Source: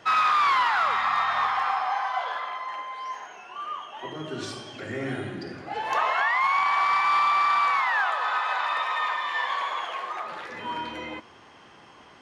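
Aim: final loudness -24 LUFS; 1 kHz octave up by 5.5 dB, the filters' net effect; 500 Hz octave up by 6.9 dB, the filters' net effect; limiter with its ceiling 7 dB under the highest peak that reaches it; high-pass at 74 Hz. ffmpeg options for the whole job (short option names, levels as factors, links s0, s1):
-af "highpass=74,equalizer=f=500:t=o:g=7.5,equalizer=f=1000:t=o:g=5,volume=0.841,alimiter=limit=0.178:level=0:latency=1"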